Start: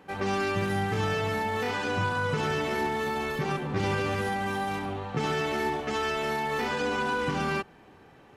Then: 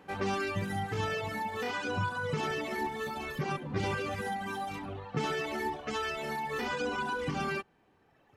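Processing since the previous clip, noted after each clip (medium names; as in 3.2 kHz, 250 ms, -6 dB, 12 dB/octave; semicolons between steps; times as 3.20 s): reverb removal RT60 1.8 s; trim -2 dB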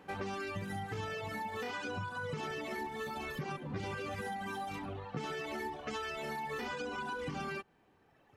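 compression, threshold -35 dBFS, peak gain reduction 8 dB; trim -1 dB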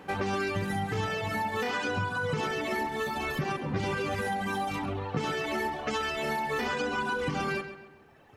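filtered feedback delay 133 ms, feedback 42%, low-pass 4.4 kHz, level -10.5 dB; trim +8.5 dB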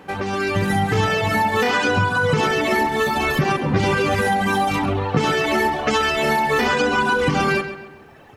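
level rider gain up to 7.5 dB; trim +4.5 dB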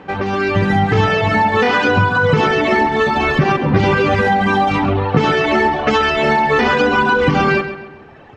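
distance through air 150 m; trim +5.5 dB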